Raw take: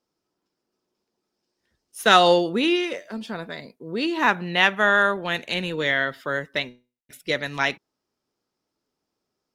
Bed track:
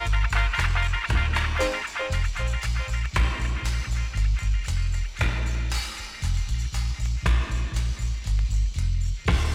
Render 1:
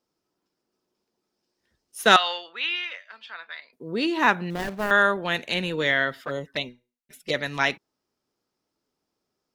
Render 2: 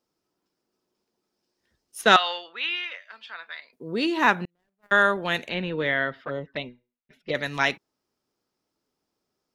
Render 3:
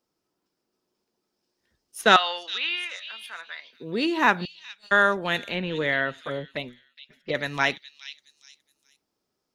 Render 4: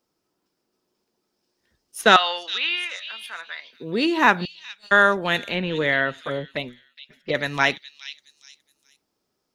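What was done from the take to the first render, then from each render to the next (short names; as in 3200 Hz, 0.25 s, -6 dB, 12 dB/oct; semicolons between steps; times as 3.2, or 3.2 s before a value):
2.16–3.73 Butterworth band-pass 2100 Hz, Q 0.85; 4.5–4.91 median filter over 41 samples; 6.25–7.34 envelope flanger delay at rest 6.3 ms, full sweep at -23.5 dBFS
2.01–3.02 air absorption 57 m; 4.45–4.97 gate -22 dBFS, range -45 dB; 5.49–7.35 air absorption 290 m
delay with a stepping band-pass 0.417 s, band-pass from 4100 Hz, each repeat 0.7 oct, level -7.5 dB
gain +3.5 dB; limiter -1 dBFS, peak gain reduction 1.5 dB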